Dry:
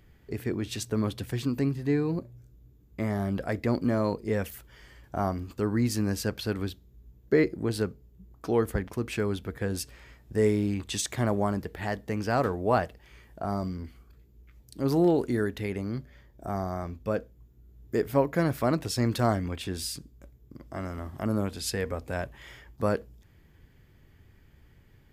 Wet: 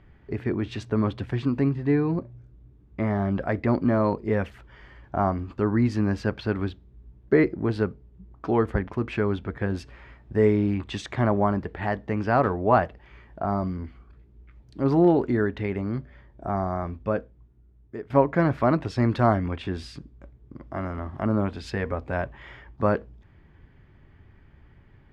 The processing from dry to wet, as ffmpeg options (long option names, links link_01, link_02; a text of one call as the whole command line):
ffmpeg -i in.wav -filter_complex "[0:a]asplit=2[link_01][link_02];[link_01]atrim=end=18.1,asetpts=PTS-STARTPTS,afade=type=out:start_time=16.99:duration=1.11:silence=0.149624[link_03];[link_02]atrim=start=18.1,asetpts=PTS-STARTPTS,afade=type=in:duration=0.004:curve=hsin:silence=0.149624[link_04];[link_03][link_04]concat=n=2:v=0:a=1,lowpass=2500,equalizer=frequency=1000:width=1.5:gain=3,bandreject=frequency=480:width=12,volume=4dB" out.wav